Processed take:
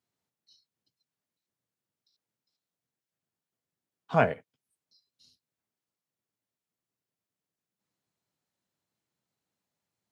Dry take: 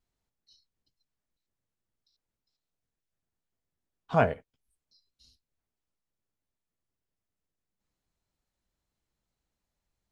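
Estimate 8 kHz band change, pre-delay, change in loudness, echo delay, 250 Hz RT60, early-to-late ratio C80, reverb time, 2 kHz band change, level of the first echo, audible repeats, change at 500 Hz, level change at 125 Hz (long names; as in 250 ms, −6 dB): can't be measured, no reverb audible, +0.5 dB, no echo audible, no reverb audible, no reverb audible, no reverb audible, +2.0 dB, no echo audible, no echo audible, 0.0 dB, −1.0 dB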